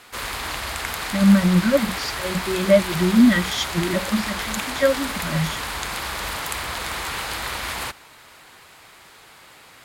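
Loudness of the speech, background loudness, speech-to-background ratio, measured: -20.5 LUFS, -27.5 LUFS, 7.0 dB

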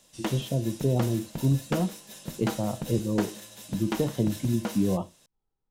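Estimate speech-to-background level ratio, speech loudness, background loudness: 8.0 dB, -29.0 LUFS, -37.0 LUFS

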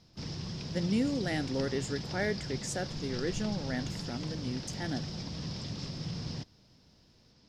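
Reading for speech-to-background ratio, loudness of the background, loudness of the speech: 3.5 dB, -39.0 LUFS, -35.5 LUFS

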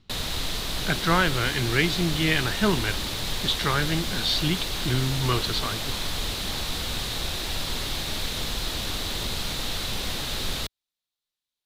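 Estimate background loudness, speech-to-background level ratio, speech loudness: -29.0 LUFS, 3.5 dB, -25.5 LUFS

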